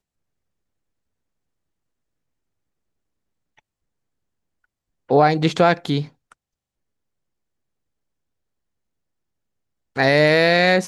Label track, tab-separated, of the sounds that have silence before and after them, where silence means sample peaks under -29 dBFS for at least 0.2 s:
5.100000	6.050000	sound